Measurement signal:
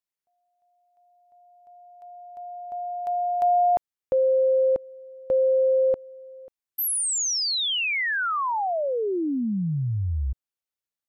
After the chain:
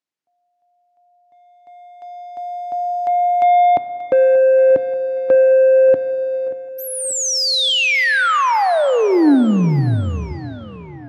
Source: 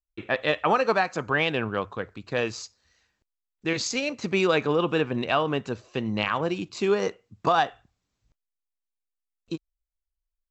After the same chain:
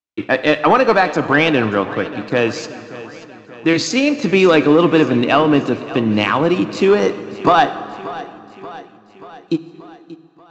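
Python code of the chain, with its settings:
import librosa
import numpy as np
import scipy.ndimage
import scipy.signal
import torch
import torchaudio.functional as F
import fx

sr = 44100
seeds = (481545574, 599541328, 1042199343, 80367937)

p1 = scipy.signal.sosfilt(scipy.signal.butter(4, 100.0, 'highpass', fs=sr, output='sos'), x)
p2 = fx.peak_eq(p1, sr, hz=290.0, db=8.5, octaves=0.34)
p3 = fx.leveller(p2, sr, passes=1)
p4 = fx.air_absorb(p3, sr, metres=68.0)
p5 = p4 + fx.echo_feedback(p4, sr, ms=583, feedback_pct=58, wet_db=-17.0, dry=0)
p6 = fx.rev_plate(p5, sr, seeds[0], rt60_s=2.7, hf_ratio=0.75, predelay_ms=0, drr_db=12.5)
y = p6 * 10.0 ** (7.0 / 20.0)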